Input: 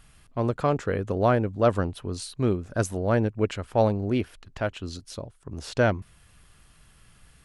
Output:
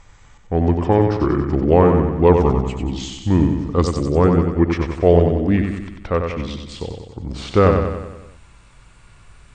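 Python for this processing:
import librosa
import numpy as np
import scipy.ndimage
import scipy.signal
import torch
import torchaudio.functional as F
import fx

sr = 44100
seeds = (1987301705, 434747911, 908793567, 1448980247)

y = fx.speed_glide(x, sr, from_pct=71, to_pct=85)
y = fx.lowpass(y, sr, hz=3700.0, slope=6)
y = fx.echo_feedback(y, sr, ms=93, feedback_pct=56, wet_db=-5.5)
y = y * librosa.db_to_amplitude(7.5)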